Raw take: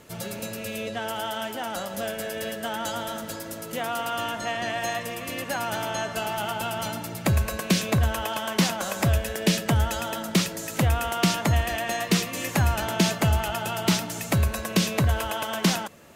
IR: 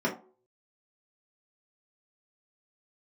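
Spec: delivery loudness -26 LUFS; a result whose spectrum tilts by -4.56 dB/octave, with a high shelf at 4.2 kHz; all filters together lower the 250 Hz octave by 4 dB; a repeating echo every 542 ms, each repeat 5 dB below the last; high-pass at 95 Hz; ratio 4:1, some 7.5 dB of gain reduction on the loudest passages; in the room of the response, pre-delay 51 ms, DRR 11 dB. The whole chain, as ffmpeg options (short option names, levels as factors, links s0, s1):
-filter_complex "[0:a]highpass=95,equalizer=f=250:t=o:g=-6,highshelf=f=4200:g=-5.5,acompressor=threshold=0.0355:ratio=4,aecho=1:1:542|1084|1626|2168|2710|3252|3794:0.562|0.315|0.176|0.0988|0.0553|0.031|0.0173,asplit=2[s0][s1];[1:a]atrim=start_sample=2205,adelay=51[s2];[s1][s2]afir=irnorm=-1:irlink=0,volume=0.0841[s3];[s0][s3]amix=inputs=2:normalize=0,volume=1.88"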